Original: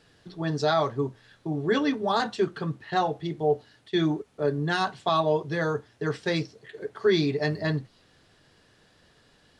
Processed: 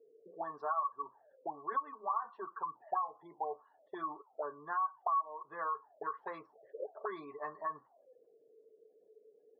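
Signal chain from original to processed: block floating point 7-bit; auto-wah 430–1100 Hz, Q 20, up, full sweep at -25.5 dBFS; compressor 4:1, threshold -46 dBFS, peak gain reduction 17.5 dB; spectral gate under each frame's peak -25 dB strong; band-pass 640 Hz, Q 0.51; gain +14 dB

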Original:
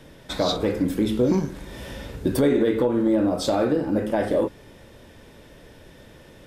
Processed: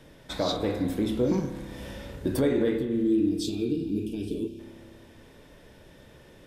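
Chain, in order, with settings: spectral gain 2.78–4.59, 470–2300 Hz -29 dB; spring tank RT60 1.9 s, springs 30 ms, chirp 20 ms, DRR 8.5 dB; gain -5 dB

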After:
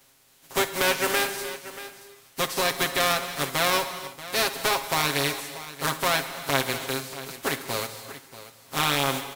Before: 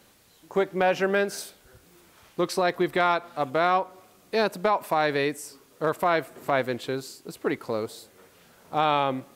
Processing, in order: spectral contrast lowered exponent 0.38; comb 7.4 ms, depth 90%; tapped delay 66/634 ms -18.5/-15 dB; non-linear reverb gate 0.36 s flat, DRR 10 dB; gain -3.5 dB

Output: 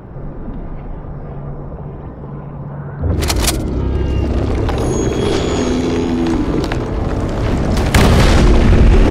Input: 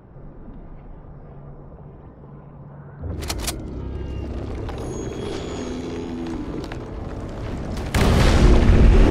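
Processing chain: on a send: feedback echo 63 ms, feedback 32%, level -21.5 dB; on the sum: maximiser +14 dB; gain -1 dB

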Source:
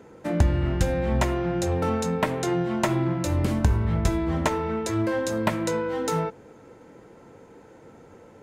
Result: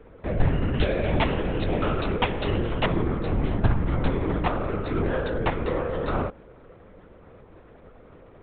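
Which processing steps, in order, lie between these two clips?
LPC vocoder at 8 kHz whisper; 0.74–2.86 bell 3100 Hz +8.5 dB 0.97 oct

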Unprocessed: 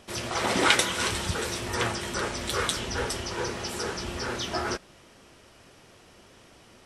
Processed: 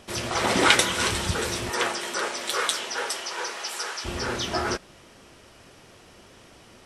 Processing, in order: 1.69–4.04 HPF 320 Hz -> 910 Hz 12 dB/oct; gain +3 dB

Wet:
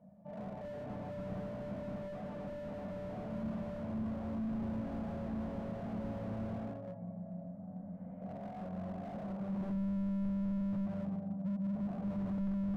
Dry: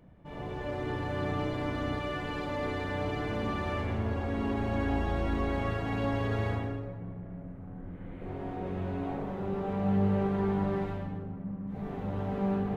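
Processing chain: double band-pass 360 Hz, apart 1.6 oct; 8.37–9.54 dynamic EQ 280 Hz, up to -6 dB, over -57 dBFS, Q 1; slew limiter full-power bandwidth 1.9 Hz; gain +6.5 dB

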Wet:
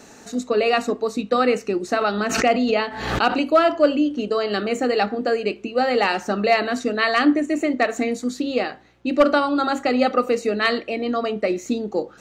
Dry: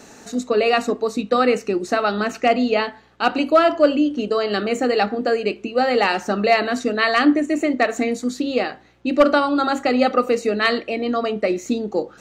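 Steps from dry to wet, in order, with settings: 2.01–3.5 backwards sustainer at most 55 dB/s; gain -1.5 dB

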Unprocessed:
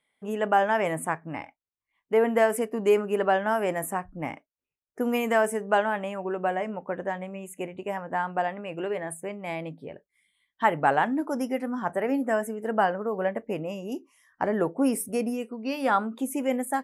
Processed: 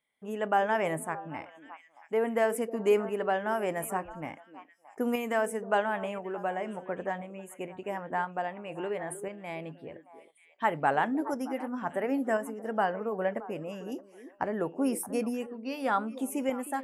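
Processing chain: delay with a stepping band-pass 0.311 s, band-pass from 370 Hz, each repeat 1.4 oct, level -10.5 dB; tremolo saw up 0.97 Hz, depth 40%; gain -2.5 dB

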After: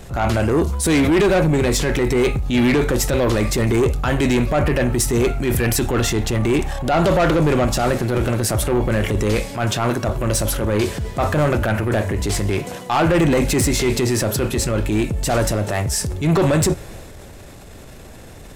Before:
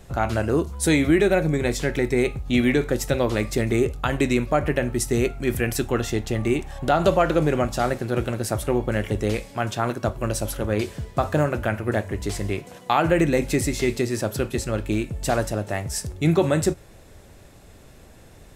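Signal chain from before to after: transient shaper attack -8 dB, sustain +4 dB; soft clip -20.5 dBFS, distortion -11 dB; gain +9 dB

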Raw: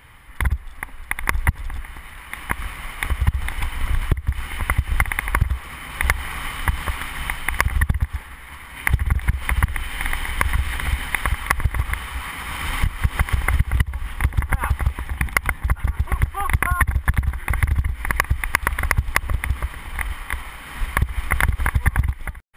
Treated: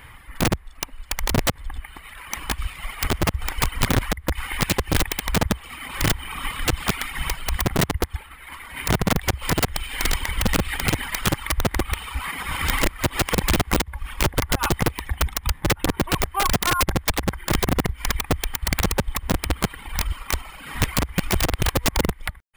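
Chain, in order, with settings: reverb removal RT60 1.6 s; wrapped overs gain 17 dB; gain +4 dB

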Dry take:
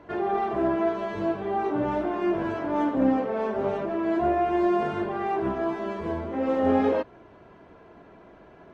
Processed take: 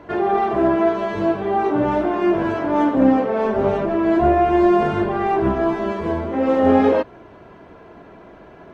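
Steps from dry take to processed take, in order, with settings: 3.44–5.92 low shelf 100 Hz +10.5 dB; gain +7.5 dB

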